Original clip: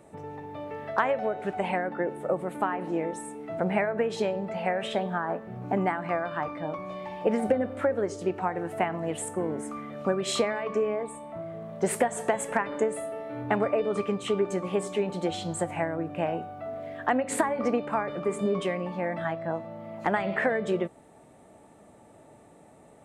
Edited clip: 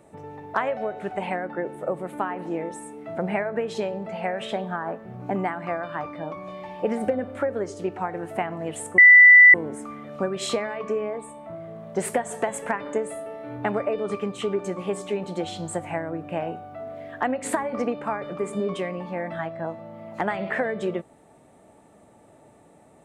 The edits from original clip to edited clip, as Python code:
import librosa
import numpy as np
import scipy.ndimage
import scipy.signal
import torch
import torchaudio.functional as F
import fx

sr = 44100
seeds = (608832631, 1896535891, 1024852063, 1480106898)

y = fx.edit(x, sr, fx.cut(start_s=0.54, length_s=0.42),
    fx.insert_tone(at_s=9.4, length_s=0.56, hz=1980.0, db=-7.0), tone=tone)